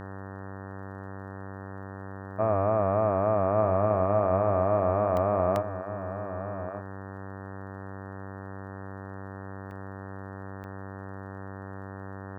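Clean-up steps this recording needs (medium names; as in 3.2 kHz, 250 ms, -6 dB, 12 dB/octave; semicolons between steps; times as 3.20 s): de-click; de-hum 96.9 Hz, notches 19; interpolate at 5.17/5.56/9.71/10.64 s, 1 ms; inverse comb 1188 ms -11 dB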